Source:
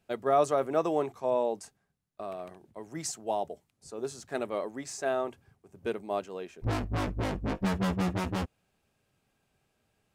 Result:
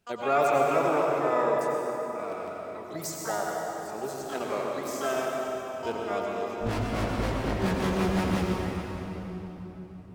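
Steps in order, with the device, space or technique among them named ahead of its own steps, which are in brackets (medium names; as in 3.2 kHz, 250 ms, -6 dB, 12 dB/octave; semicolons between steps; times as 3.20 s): shimmer-style reverb (harmony voices +12 st -6 dB; reverberation RT60 4.0 s, pre-delay 84 ms, DRR -1.5 dB); trim -1.5 dB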